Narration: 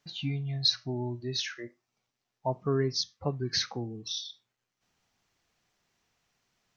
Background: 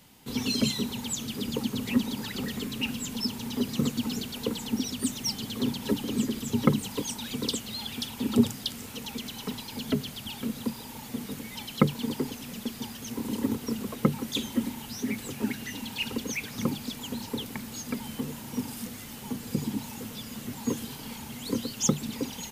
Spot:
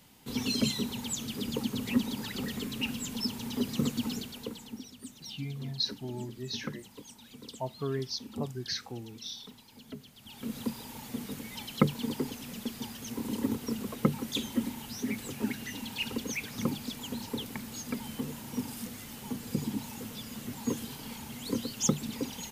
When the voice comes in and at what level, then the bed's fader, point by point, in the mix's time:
5.15 s, −5.5 dB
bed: 0:04.08 −2.5 dB
0:04.93 −16.5 dB
0:10.14 −16.5 dB
0:10.55 −2.5 dB

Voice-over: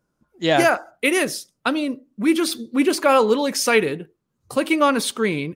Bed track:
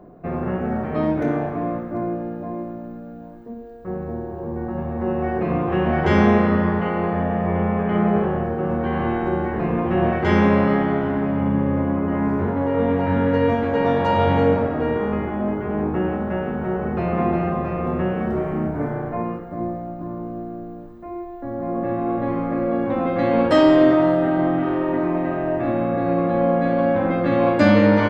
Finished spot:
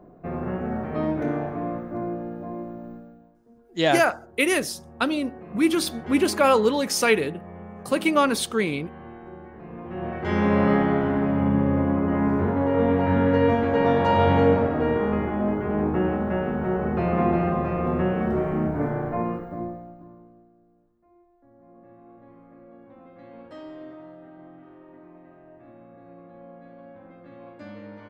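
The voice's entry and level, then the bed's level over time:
3.35 s, −2.5 dB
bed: 0:02.94 −4.5 dB
0:03.36 −19.5 dB
0:09.61 −19.5 dB
0:10.69 −1 dB
0:19.44 −1 dB
0:20.54 −27 dB

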